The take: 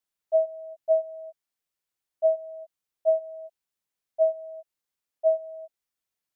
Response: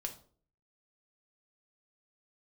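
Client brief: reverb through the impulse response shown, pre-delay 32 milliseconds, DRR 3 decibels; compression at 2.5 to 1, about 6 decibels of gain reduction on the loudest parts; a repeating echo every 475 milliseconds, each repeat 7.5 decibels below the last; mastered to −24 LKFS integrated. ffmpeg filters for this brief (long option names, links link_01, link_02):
-filter_complex "[0:a]acompressor=threshold=-26dB:ratio=2.5,aecho=1:1:475|950|1425|1900|2375:0.422|0.177|0.0744|0.0312|0.0131,asplit=2[link_01][link_02];[1:a]atrim=start_sample=2205,adelay=32[link_03];[link_02][link_03]afir=irnorm=-1:irlink=0,volume=-2dB[link_04];[link_01][link_04]amix=inputs=2:normalize=0,volume=11dB"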